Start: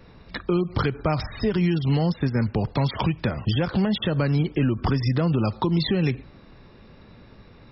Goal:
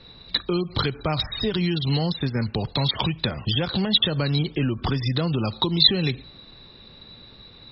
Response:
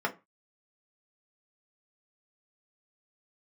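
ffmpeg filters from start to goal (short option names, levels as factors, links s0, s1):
-filter_complex "[0:a]lowpass=f=3900:t=q:w=14,asplit=2[s0][s1];[1:a]atrim=start_sample=2205,asetrate=36603,aresample=44100[s2];[s1][s2]afir=irnorm=-1:irlink=0,volume=0.0355[s3];[s0][s3]amix=inputs=2:normalize=0,volume=0.75"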